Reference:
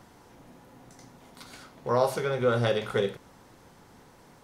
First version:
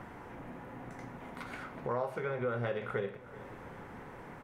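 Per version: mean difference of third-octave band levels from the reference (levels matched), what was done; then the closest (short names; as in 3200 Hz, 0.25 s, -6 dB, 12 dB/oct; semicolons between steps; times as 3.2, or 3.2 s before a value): 8.5 dB: resonant high shelf 3100 Hz -13 dB, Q 1.5; compressor 2.5:1, threshold -46 dBFS, peak gain reduction 18.5 dB; feedback echo 0.38 s, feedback 57%, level -18 dB; gain +6 dB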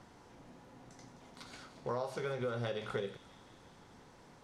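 5.5 dB: LPF 7800 Hz 12 dB/oct; compressor 6:1, threshold -30 dBFS, peak gain reduction 11.5 dB; thin delay 0.175 s, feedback 70%, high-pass 3000 Hz, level -11.5 dB; gain -4 dB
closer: second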